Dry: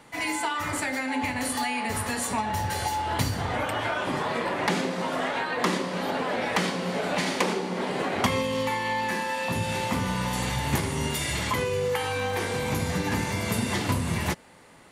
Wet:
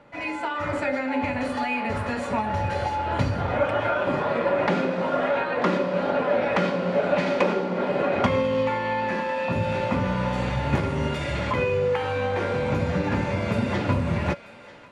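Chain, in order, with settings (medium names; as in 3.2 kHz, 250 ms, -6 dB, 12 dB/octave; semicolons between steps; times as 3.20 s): tape spacing loss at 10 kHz 26 dB; on a send: thinning echo 942 ms, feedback 68%, high-pass 1 kHz, level -16 dB; on the sum: level rider gain up to 3.5 dB; small resonant body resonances 570/1400/2500 Hz, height 14 dB, ringing for 100 ms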